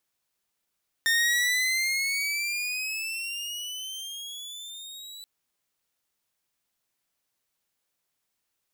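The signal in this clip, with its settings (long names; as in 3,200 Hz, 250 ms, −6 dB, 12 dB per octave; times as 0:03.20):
pitch glide with a swell saw, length 4.18 s, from 1,820 Hz, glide +13.5 semitones, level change −20 dB, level −17.5 dB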